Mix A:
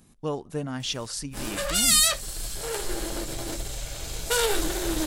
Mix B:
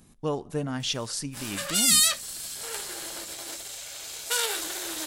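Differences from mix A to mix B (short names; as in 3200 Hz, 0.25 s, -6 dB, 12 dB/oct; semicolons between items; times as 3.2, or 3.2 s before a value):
speech: send +9.5 dB; background: add HPF 1400 Hz 6 dB/oct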